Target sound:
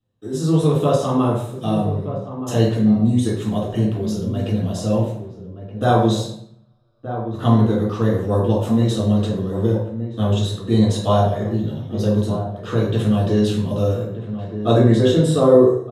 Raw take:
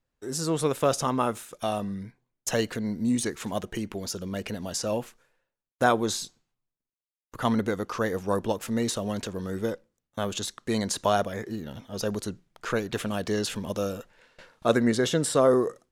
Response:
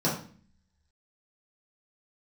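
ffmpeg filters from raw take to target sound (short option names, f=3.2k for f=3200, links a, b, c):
-filter_complex "[0:a]asplit=2[a][b];[b]adelay=1224,volume=-10dB,highshelf=f=4k:g=-27.6[c];[a][c]amix=inputs=2:normalize=0[d];[1:a]atrim=start_sample=2205,asetrate=29988,aresample=44100[e];[d][e]afir=irnorm=-1:irlink=0,volume=-10dB"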